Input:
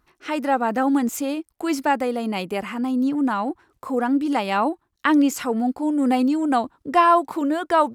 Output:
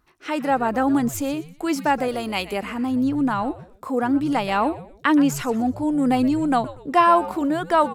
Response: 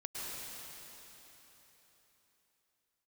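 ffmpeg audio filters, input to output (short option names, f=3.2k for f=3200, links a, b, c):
-filter_complex "[0:a]asettb=1/sr,asplit=3[a][b][c];[a]atrim=end=2.084[d];[b]atrim=start=2.08:end=2.53,asetpts=PTS-STARTPTS,afade=t=in:d=0.004:c=qsin,afade=t=out:st=0.446:d=0.004:c=qsin,tiltshelf=f=630:g=-5.5[e];[c]atrim=start=2.526[f];[d][e]acrossfade=d=0.004:c1=hsin:c2=qsin[g];[g][f]acrossfade=d=0.004:c1=qsin:c2=hsin,asplit=4[h][i][j][k];[i]adelay=122,afreqshift=-140,volume=-16dB[l];[j]adelay=244,afreqshift=-280,volume=-25.4dB[m];[k]adelay=366,afreqshift=-420,volume=-34.7dB[n];[h][l][m][n]amix=inputs=4:normalize=0"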